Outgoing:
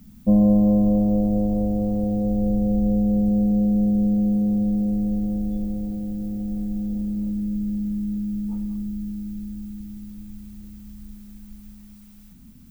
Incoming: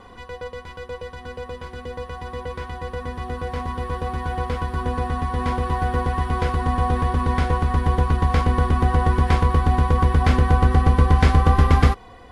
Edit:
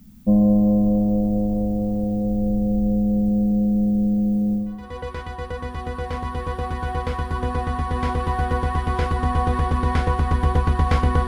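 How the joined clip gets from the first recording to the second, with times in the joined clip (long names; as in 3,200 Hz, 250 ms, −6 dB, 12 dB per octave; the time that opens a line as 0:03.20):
outgoing
0:04.76: continue with incoming from 0:02.19, crossfade 0.46 s quadratic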